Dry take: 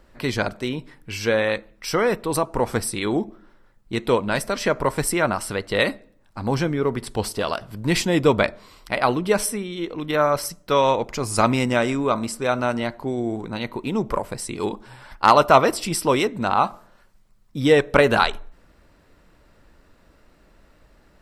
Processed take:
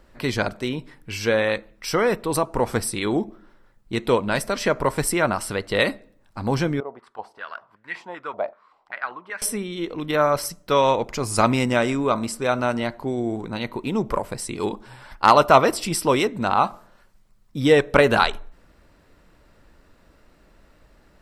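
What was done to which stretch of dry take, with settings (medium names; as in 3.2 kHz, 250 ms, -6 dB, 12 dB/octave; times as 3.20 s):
6.80–9.42 s: step-sequenced band-pass 5.2 Hz 700–1800 Hz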